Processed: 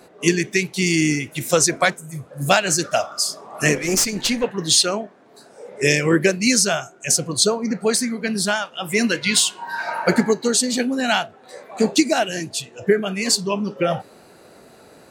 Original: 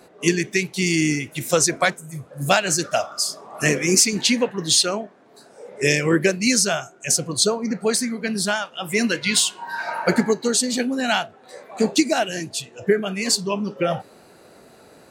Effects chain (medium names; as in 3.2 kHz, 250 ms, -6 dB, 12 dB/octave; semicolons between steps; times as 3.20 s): 3.75–4.44 s: valve stage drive 13 dB, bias 0.6; trim +1.5 dB